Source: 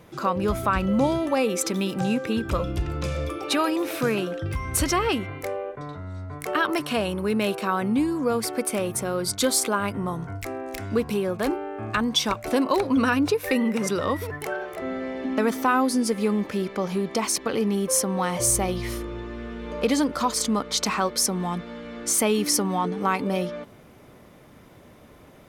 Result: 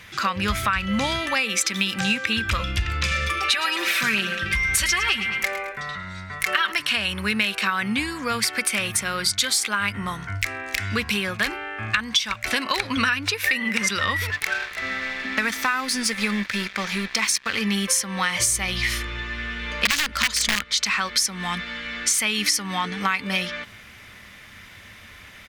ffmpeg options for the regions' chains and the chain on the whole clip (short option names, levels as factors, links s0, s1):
-filter_complex "[0:a]asettb=1/sr,asplit=3[s0][s1][s2];[s0]atrim=end=3.114[s3];[s1]atrim=start=3.11:end=6.72,asetpts=PTS-STARTPTS,afade=t=in:d=0.004:c=qsin,afade=t=out:st=3.606:d=0.004:c=qsin,aecho=1:1:5.2:0.77,atrim=end_sample=159201,aecho=1:1:108|216|324|432:0.211|0.0888|0.0373|0.0157,atrim=end_sample=159201[s4];[s2]atrim=start=6.716[s5];[s3][s4]acrossfade=d=0.004:c1=hsin:c2=qsin[s6];[s6][s5]acrossfade=d=0.004:c1=qsin:c2=hsin,asettb=1/sr,asplit=3[s7][s8][s9];[s7]atrim=end=14.314[s10];[s8]atrim=start=14.31:end=17.61,asetpts=PTS-STARTPTS,afade=t=in:d=0.004:c=qsin,afade=t=out:st=3.296:d=0.004:c=qsin,aeval=exprs='sgn(val(0))*max(abs(val(0))-0.0119,0)':c=same,bandreject=f=3000:w=16[s11];[s9]atrim=start=17.606[s12];[s10][s11]acrossfade=d=0.004:c1=hsin:c2=qsin[s13];[s13][s12]acrossfade=d=0.004:c1=qsin:c2=hsin,asettb=1/sr,asplit=3[s14][s15][s16];[s14]atrim=end=19.854[s17];[s15]atrim=start=19.85:end=20.64,asetpts=PTS-STARTPTS,afade=t=in:d=0.004:c=qsin,afade=t=out:st=0.786:d=0.004:c=qsin,lowshelf=f=150:g=11,acontrast=24,aeval=exprs='(mod(3.16*val(0)+1,2)-1)/3.16':c=same[s18];[s16]atrim=start=20.636[s19];[s17][s18]acrossfade=d=0.004:c1=hsin:c2=qsin[s20];[s20][s19]acrossfade=d=0.004:c1=qsin:c2=hsin,firequalizer=gain_entry='entry(100,0);entry(150,-18);entry(1800,13);entry(11000,2)':delay=0.05:min_phase=1,acompressor=threshold=0.0708:ratio=6,equalizer=f=200:w=2.1:g=14,volume=1.58"